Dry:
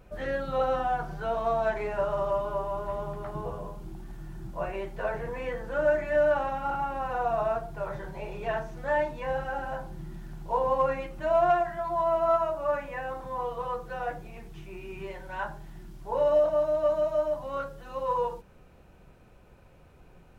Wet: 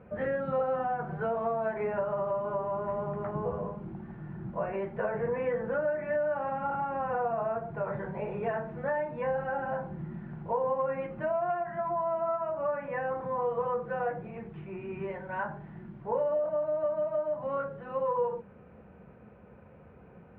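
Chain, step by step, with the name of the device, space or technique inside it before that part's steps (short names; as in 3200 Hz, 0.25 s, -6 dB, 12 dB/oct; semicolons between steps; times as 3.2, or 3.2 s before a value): bass amplifier (compressor 5:1, threshold -31 dBFS, peak gain reduction 11 dB; speaker cabinet 69–2200 Hz, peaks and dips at 210 Hz +9 dB, 330 Hz -3 dB, 470 Hz +6 dB); gain +2 dB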